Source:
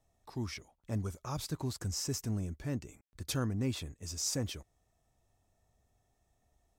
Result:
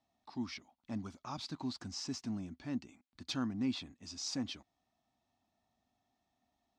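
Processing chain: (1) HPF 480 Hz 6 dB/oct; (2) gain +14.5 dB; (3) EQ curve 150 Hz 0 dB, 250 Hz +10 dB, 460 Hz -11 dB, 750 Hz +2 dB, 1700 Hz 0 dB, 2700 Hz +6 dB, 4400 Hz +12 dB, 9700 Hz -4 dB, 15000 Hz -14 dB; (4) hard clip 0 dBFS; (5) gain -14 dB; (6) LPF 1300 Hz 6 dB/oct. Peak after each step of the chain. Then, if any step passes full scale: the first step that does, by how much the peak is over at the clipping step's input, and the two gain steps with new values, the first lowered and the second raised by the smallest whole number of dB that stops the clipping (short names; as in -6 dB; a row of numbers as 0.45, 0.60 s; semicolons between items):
-21.5, -7.0, -1.5, -1.5, -15.5, -24.5 dBFS; no overload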